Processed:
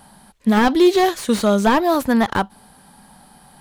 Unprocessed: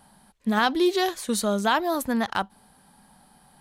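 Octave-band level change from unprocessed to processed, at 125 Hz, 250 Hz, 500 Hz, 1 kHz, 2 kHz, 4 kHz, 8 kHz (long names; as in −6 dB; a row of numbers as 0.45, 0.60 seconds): +9.0, +9.0, +8.5, +6.5, +4.0, +3.0, +2.0 decibels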